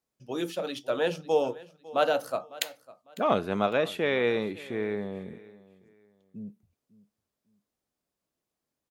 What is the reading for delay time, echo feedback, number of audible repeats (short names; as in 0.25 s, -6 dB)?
0.552 s, 29%, 2